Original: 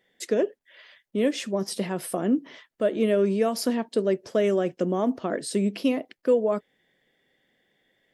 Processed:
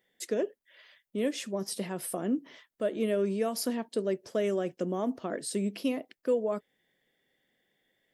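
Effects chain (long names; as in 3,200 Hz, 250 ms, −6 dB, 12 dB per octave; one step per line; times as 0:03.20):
high-shelf EQ 8,900 Hz +10 dB
level −6.5 dB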